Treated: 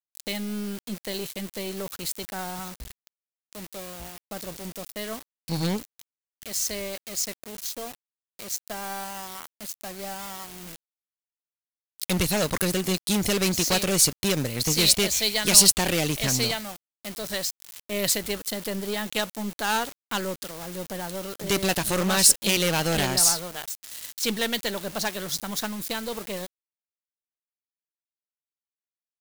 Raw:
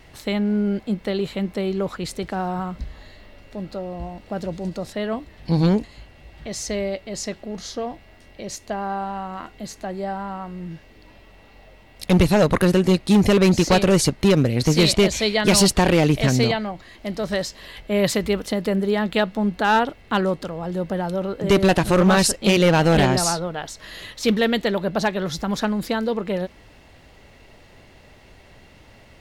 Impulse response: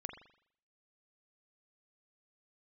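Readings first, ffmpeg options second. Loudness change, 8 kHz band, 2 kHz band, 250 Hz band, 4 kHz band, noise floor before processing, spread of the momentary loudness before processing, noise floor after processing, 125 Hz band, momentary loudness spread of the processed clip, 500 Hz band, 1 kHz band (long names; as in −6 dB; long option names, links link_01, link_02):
−4.0 dB, +5.5 dB, −4.5 dB, −10.0 dB, +0.5 dB, −49 dBFS, 17 LU, below −85 dBFS, −10.0 dB, 18 LU, −9.5 dB, −8.0 dB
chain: -af "aeval=exprs='val(0)*gte(abs(val(0)),0.0237)':channel_layout=same,aeval=exprs='0.422*(cos(1*acos(clip(val(0)/0.422,-1,1)))-cos(1*PI/2))+0.0335*(cos(4*acos(clip(val(0)/0.422,-1,1)))-cos(4*PI/2))+0.0473*(cos(6*acos(clip(val(0)/0.422,-1,1)))-cos(6*PI/2))':channel_layout=same,crystalizer=i=5.5:c=0,volume=-10.5dB"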